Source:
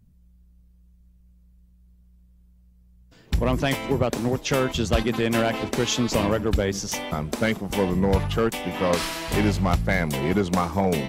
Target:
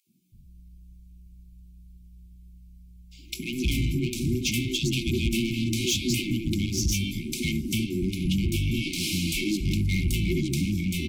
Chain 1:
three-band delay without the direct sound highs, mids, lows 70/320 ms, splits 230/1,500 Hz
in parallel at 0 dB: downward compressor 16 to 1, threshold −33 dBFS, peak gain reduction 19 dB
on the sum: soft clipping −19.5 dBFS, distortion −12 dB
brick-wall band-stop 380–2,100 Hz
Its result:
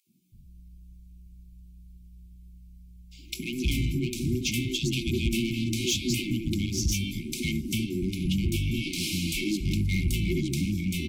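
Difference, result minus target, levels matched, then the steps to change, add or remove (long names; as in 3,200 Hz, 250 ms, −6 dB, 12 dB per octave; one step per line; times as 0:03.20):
downward compressor: peak gain reduction +10 dB
change: downward compressor 16 to 1, threshold −22.5 dBFS, peak gain reduction 9.5 dB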